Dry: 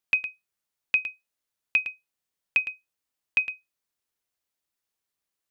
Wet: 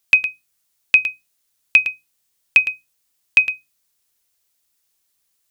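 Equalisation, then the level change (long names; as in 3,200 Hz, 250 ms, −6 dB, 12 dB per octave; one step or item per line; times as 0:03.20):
low-shelf EQ 140 Hz +6.5 dB
high-shelf EQ 3,100 Hz +11.5 dB
mains-hum notches 60/120/180/240/300 Hz
+6.0 dB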